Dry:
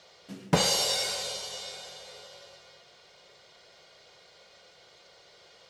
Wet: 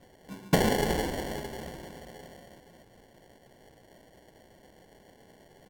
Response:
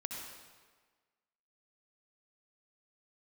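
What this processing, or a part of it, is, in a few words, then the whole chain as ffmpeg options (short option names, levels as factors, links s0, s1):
crushed at another speed: -af "asetrate=55125,aresample=44100,acrusher=samples=28:mix=1:aa=0.000001,asetrate=35280,aresample=44100"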